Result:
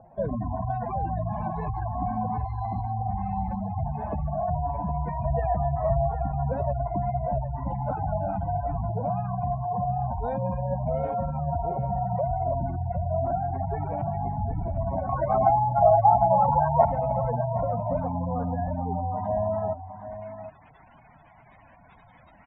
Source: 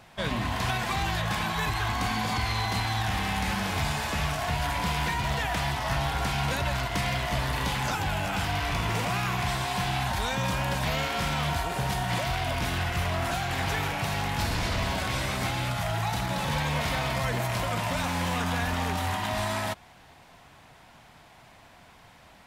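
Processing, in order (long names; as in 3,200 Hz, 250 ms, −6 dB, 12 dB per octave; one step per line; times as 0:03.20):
gate on every frequency bin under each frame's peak −10 dB strong
low-pass filter sweep 640 Hz → 4,200 Hz, 0:19.74–0:20.58
0:05.25–0:06.12: comb filter 1.7 ms, depth 81%
0:15.09–0:16.85: flat-topped bell 1,100 Hz +15 dB
on a send: single-tap delay 760 ms −11.5 dB
on the sum: level +1 dB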